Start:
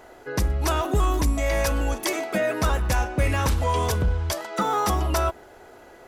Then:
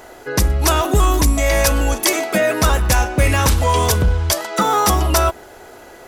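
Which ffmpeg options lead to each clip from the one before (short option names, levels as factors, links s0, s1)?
-af "highshelf=f=3800:g=7,volume=2.24"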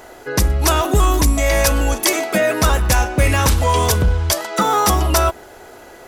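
-af anull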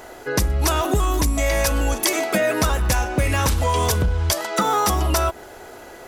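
-af "acompressor=threshold=0.158:ratio=6"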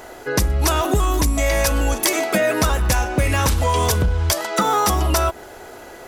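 -af "aeval=exprs='(mod(2.24*val(0)+1,2)-1)/2.24':c=same,volume=1.19"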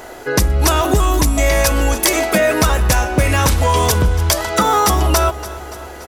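-af "aecho=1:1:287|574|861|1148|1435|1722:0.15|0.0883|0.0521|0.0307|0.0181|0.0107,volume=1.58"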